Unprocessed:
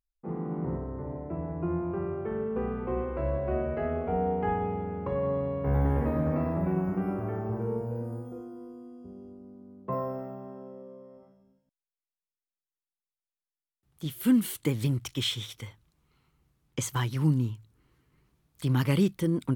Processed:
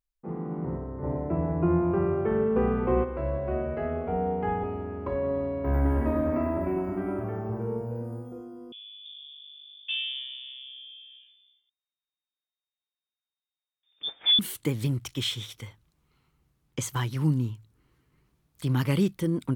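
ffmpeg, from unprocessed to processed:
ffmpeg -i in.wav -filter_complex "[0:a]asplit=3[link_01][link_02][link_03];[link_01]afade=type=out:start_time=1.02:duration=0.02[link_04];[link_02]acontrast=78,afade=type=in:start_time=1.02:duration=0.02,afade=type=out:start_time=3.03:duration=0.02[link_05];[link_03]afade=type=in:start_time=3.03:duration=0.02[link_06];[link_04][link_05][link_06]amix=inputs=3:normalize=0,asettb=1/sr,asplit=3[link_07][link_08][link_09];[link_07]atrim=end=4.634[link_10];[link_08]atrim=start=4.63:end=7.24,asetpts=PTS-STARTPTS,afade=type=in:duration=0.004:curve=qsin,afade=type=out:start_time=2.606:duration=0.004:curve=qsin,aecho=1:1:3.1:0.76,atrim=end_sample=115101[link_11];[link_09]atrim=start=7.236[link_12];[link_10][link_11]acrossfade=duration=0.004:curve1=hsin:curve2=qsin[link_13];[link_13][link_12]acrossfade=duration=0.004:curve1=qsin:curve2=hsin,asettb=1/sr,asplit=3[link_14][link_15][link_16];[link_14]atrim=end=8.724[link_17];[link_15]atrim=start=8.72:end=14.39,asetpts=PTS-STARTPTS,afade=type=in:duration=0.004:curve=qsin,afade=type=out:start_time=5.666:duration=0.004:curve=qsin,lowpass=frequency=3100:width_type=q:width=0.5098,lowpass=frequency=3100:width_type=q:width=0.6013,lowpass=frequency=3100:width_type=q:width=0.9,lowpass=frequency=3100:width_type=q:width=2.563,afreqshift=-3700[link_18];[link_16]atrim=start=14.386[link_19];[link_17][link_18]acrossfade=duration=0.004:curve1=hsin:curve2=qsin[link_20];[link_20][link_19]acrossfade=duration=0.004:curve1=qsin:curve2=hsin" out.wav

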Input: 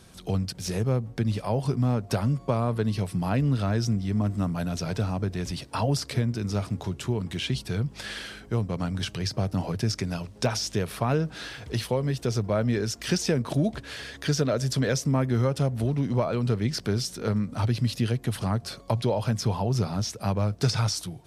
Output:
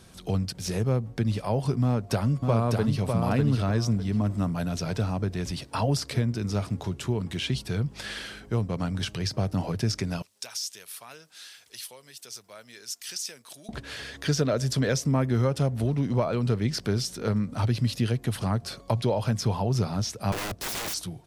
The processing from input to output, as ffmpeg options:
ffmpeg -i in.wav -filter_complex "[0:a]asplit=2[link_01][link_02];[link_02]afade=type=in:start_time=1.82:duration=0.01,afade=type=out:start_time=3.01:duration=0.01,aecho=0:1:600|1200|1800:0.630957|0.157739|0.0394348[link_03];[link_01][link_03]amix=inputs=2:normalize=0,asettb=1/sr,asplit=3[link_04][link_05][link_06];[link_04]atrim=end=10.224[link_07];[link_05]atrim=start=10.22:end=13.69,asetpts=PTS-STARTPTS,afade=type=in:duration=0.004:curve=qsin,afade=type=out:start_time=3.466:duration=0.004:curve=qsin,aderivative[link_08];[link_06]atrim=start=13.686[link_09];[link_07][link_08]acrossfade=duration=0.004:curve1=hsin:curve2=qsin[link_10];[link_10][link_09]acrossfade=duration=0.004:curve1=qsin:curve2=hsin,asettb=1/sr,asplit=3[link_11][link_12][link_13];[link_11]atrim=end=20.324[link_14];[link_12]atrim=start=20.32:end=20.94,asetpts=PTS-STARTPTS,afade=type=in:duration=0.004:curve=qsin,afade=type=out:start_time=0.616:duration=0.004:curve=qsin,aeval=exprs='(mod(22.4*val(0)+1,2)-1)/22.4':channel_layout=same[link_15];[link_13]atrim=start=20.936[link_16];[link_14][link_15]acrossfade=duration=0.004:curve1=hsin:curve2=qsin[link_17];[link_17][link_16]acrossfade=duration=0.004:curve1=qsin:curve2=hsin" out.wav

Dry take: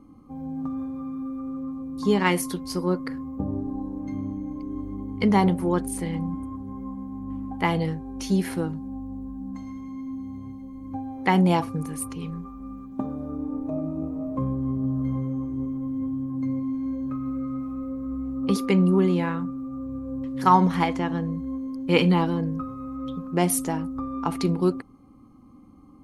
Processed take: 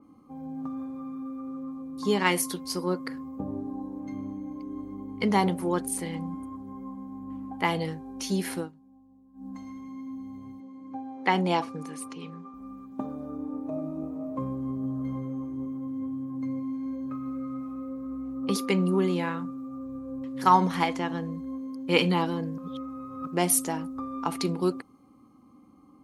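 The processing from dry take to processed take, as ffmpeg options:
ffmpeg -i in.wav -filter_complex "[0:a]asettb=1/sr,asplit=3[link_01][link_02][link_03];[link_01]atrim=end=10.604[link_04];[link_02]atrim=start=10.6:end=12.54,asetpts=PTS-STARTPTS,afade=type=in:duration=0.004:curve=qsin,afade=type=out:start_time=1.936:duration=0.004:curve=qsin,highpass=180,lowpass=6200[link_05];[link_03]atrim=start=12.536[link_06];[link_04][link_05]acrossfade=duration=0.004:curve1=hsin:curve2=qsin[link_07];[link_07][link_06]acrossfade=duration=0.004:curve1=qsin:curve2=hsin,asplit=5[link_08][link_09][link_10][link_11][link_12];[link_08]atrim=end=8.71,asetpts=PTS-STARTPTS,afade=type=out:start_time=8.58:duration=0.13:silence=0.141254[link_13];[link_09]atrim=start=8.71:end=9.33,asetpts=PTS-STARTPTS,volume=-17dB[link_14];[link_10]atrim=start=9.33:end=22.582,asetpts=PTS-STARTPTS,afade=type=in:duration=0.13:silence=0.141254[link_15];[link_11]atrim=start=22.578:end=23.272,asetpts=PTS-STARTPTS,areverse[link_16];[link_12]atrim=start=23.268[link_17];[link_13][link_14][link_15]concat=n=3:v=0:a=1[link_18];[link_18][link_16]acrossfade=duration=0.004:curve1=hsin:curve2=hsin[link_19];[link_19][link_17]acrossfade=duration=0.004:curve1=hsin:curve2=hsin,highpass=frequency=260:poles=1,adynamicequalizer=threshold=0.00631:dfrequency=2800:dqfactor=0.7:tfrequency=2800:tqfactor=0.7:attack=5:release=100:ratio=0.375:range=2:mode=boostabove:tftype=highshelf,volume=-1.5dB" out.wav

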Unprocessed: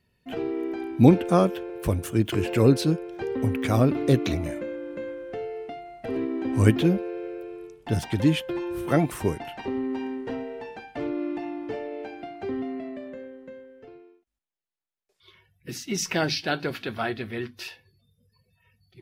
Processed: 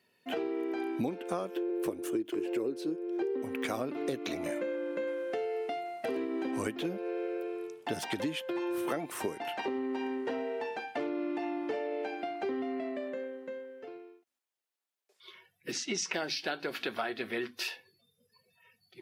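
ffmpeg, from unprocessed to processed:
ffmpeg -i in.wav -filter_complex "[0:a]asettb=1/sr,asplit=3[link_01][link_02][link_03];[link_01]atrim=end=1.564[link_04];[link_02]atrim=start=1.56:end=3.42,asetpts=PTS-STARTPTS,afade=type=in:duration=0.004:curve=qsin,afade=type=out:start_time=1.856:duration=0.004:curve=qsin,equalizer=frequency=350:width_type=o:width=0.75:gain=14.5[link_05];[link_03]atrim=start=3.416[link_06];[link_04][link_05]acrossfade=duration=0.004:curve1=hsin:curve2=qsin[link_07];[link_07][link_06]acrossfade=duration=0.004:curve1=qsin:curve2=hsin,asettb=1/sr,asplit=3[link_08][link_09][link_10];[link_08]atrim=end=5.074[link_11];[link_09]atrim=start=5.07:end=6.51,asetpts=PTS-STARTPTS,afade=type=in:duration=0.004:curve=qsin,afade=type=out:start_time=1.436:duration=0.004:curve=qsin,highshelf=frequency=5500:gain=7.5[link_12];[link_10]atrim=start=6.506[link_13];[link_11][link_12]acrossfade=duration=0.004:curve1=hsin:curve2=qsin[link_14];[link_14][link_13]acrossfade=duration=0.004:curve1=qsin:curve2=hsin,asplit=3[link_15][link_16][link_17];[link_15]afade=type=out:start_time=15.71:duration=0.02[link_18];[link_16]lowpass=frequency=7600:width=0.5412,lowpass=frequency=7600:width=1.3066,afade=type=in:start_time=15.71:duration=0.02,afade=type=out:start_time=16.12:duration=0.02[link_19];[link_17]afade=type=in:start_time=16.12:duration=0.02[link_20];[link_18][link_19][link_20]amix=inputs=3:normalize=0,highpass=330,acompressor=threshold=-33dB:ratio=16,volume=3dB" out.wav

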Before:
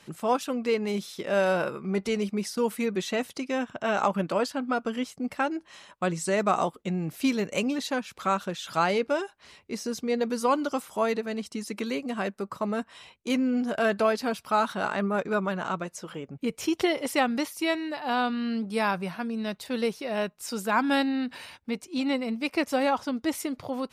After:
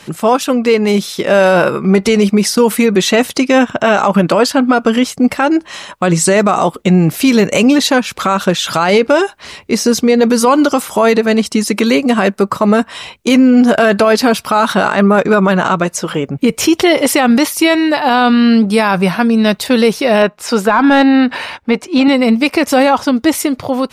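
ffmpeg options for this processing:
ffmpeg -i in.wav -filter_complex "[0:a]asettb=1/sr,asplit=3[link_01][link_02][link_03];[link_01]atrim=end=20.224[link_04];[link_02]atrim=start=20.22:end=22.08,asetpts=PTS-STARTPTS,afade=type=in:duration=0.004:curve=qsin,afade=type=out:start_time=1.856:duration=0.004:curve=qsin,asplit=2[link_05][link_06];[link_06]highpass=frequency=720:poles=1,volume=10dB,asoftclip=type=tanh:threshold=-11dB[link_07];[link_05][link_07]amix=inputs=2:normalize=0,lowpass=frequency=1300:poles=1,volume=-6dB[link_08];[link_03]atrim=start=22.076[link_09];[link_04][link_08]acrossfade=duration=0.004:curve1=hsin:curve2=qsin[link_10];[link_10][link_09]acrossfade=duration=0.004:curve1=qsin:curve2=hsin,dynaudnorm=framelen=350:gausssize=9:maxgain=4dB,alimiter=level_in=17.5dB:limit=-1dB:release=50:level=0:latency=1,volume=-1dB" out.wav

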